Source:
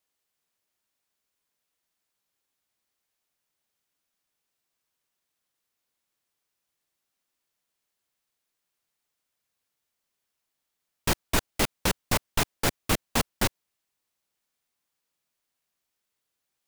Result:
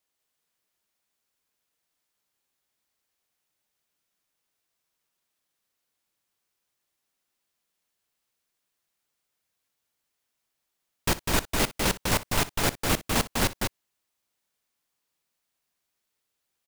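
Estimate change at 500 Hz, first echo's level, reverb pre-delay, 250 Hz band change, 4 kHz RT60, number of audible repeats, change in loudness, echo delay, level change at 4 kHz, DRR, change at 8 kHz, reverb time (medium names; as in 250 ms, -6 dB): +1.5 dB, -18.0 dB, no reverb, +1.5 dB, no reverb, 2, +1.0 dB, 60 ms, +1.5 dB, no reverb, +1.5 dB, no reverb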